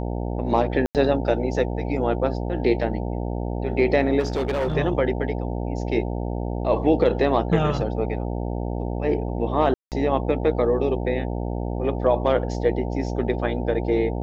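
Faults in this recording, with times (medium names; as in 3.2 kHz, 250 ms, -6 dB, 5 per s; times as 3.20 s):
buzz 60 Hz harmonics 15 -27 dBFS
0.86–0.95 s: dropout 88 ms
4.19–4.77 s: clipped -20 dBFS
9.74–9.92 s: dropout 178 ms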